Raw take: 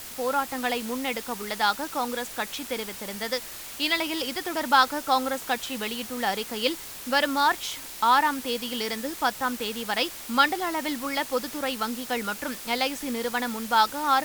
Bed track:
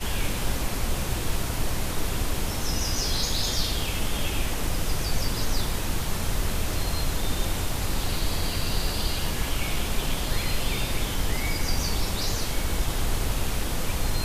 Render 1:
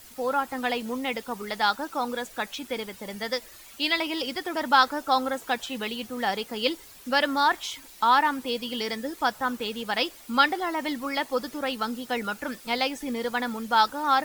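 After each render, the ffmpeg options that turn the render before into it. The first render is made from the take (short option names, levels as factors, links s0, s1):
-af "afftdn=nr=11:nf=-40"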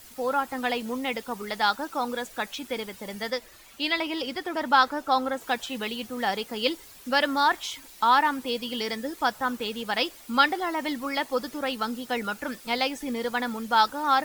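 -filter_complex "[0:a]asettb=1/sr,asplit=3[s0][s1][s2];[s0]atrim=end=3.304[s3];[s1]atrim=start=3.3:end=5.41,asetpts=PTS-STARTPTS,afade=t=in:d=0.004:c=qsin,afade=t=out:st=2.106:d=0.004:c=qsin,highshelf=f=4400:g=-6[s4];[s2]atrim=start=5.406[s5];[s3][s4]acrossfade=d=0.004:c1=hsin:c2=qsin[s6];[s6][s5]acrossfade=d=0.004:c1=qsin:c2=hsin"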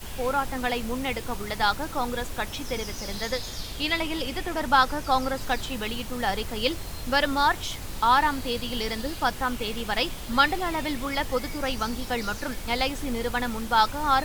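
-filter_complex "[1:a]volume=0.335[s0];[0:a][s0]amix=inputs=2:normalize=0"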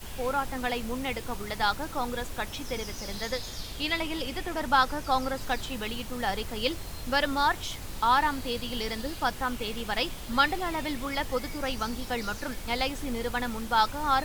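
-af "volume=0.708"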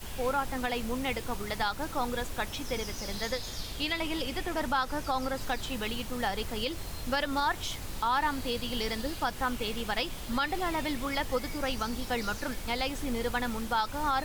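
-af "alimiter=limit=0.112:level=0:latency=1:release=132"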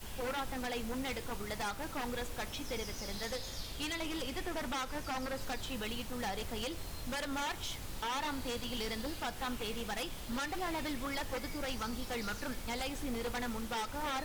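-af "aeval=exprs='0.0473*(abs(mod(val(0)/0.0473+3,4)-2)-1)':c=same,flanger=delay=9.2:depth=7.7:regen=89:speed=0.19:shape=sinusoidal"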